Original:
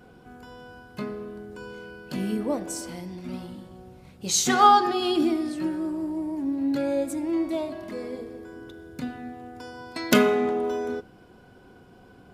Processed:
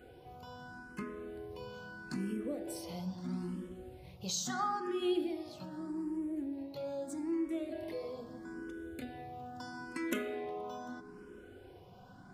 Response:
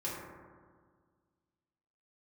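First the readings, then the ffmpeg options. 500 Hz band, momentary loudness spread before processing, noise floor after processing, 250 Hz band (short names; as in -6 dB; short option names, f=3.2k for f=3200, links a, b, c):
-12.5 dB, 21 LU, -55 dBFS, -11.0 dB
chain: -filter_complex "[0:a]acompressor=threshold=-35dB:ratio=3,asplit=2[a][b];[1:a]atrim=start_sample=2205[c];[b][c]afir=irnorm=-1:irlink=0,volume=-11dB[d];[a][d]amix=inputs=2:normalize=0,asplit=2[e][f];[f]afreqshift=0.78[g];[e][g]amix=inputs=2:normalize=1,volume=-2.5dB"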